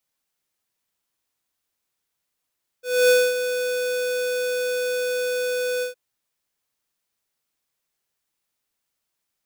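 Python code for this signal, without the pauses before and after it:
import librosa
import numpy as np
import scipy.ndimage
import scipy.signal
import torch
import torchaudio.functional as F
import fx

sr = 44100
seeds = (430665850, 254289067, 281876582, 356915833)

y = fx.adsr_tone(sr, wave='square', hz=498.0, attack_ms=261.0, decay_ms=241.0, sustain_db=-10.0, held_s=2.99, release_ms=123.0, level_db=-14.5)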